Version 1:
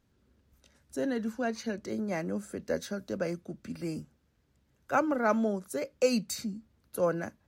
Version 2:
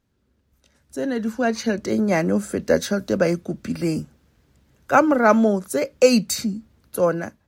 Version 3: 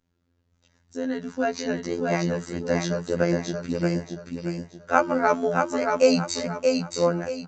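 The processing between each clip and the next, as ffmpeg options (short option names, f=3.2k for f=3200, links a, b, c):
-af "dynaudnorm=f=530:g=5:m=14dB"
-filter_complex "[0:a]afftfilt=real='hypot(re,im)*cos(PI*b)':imag='0':win_size=2048:overlap=0.75,asplit=2[a][b];[b]aecho=0:1:628|1256|1884|2512:0.631|0.208|0.0687|0.0227[c];[a][c]amix=inputs=2:normalize=0,aresample=16000,aresample=44100,volume=-1dB"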